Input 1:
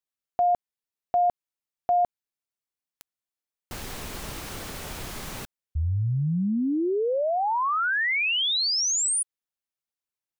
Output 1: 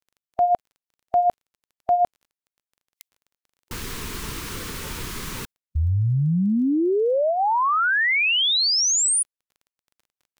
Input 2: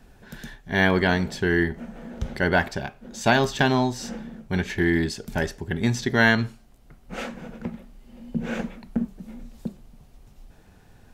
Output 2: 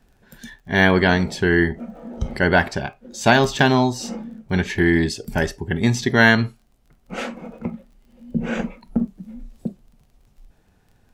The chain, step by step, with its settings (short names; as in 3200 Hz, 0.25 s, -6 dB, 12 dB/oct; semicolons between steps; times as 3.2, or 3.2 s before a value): spectral noise reduction 11 dB; crackle 19/s -50 dBFS; gain +4.5 dB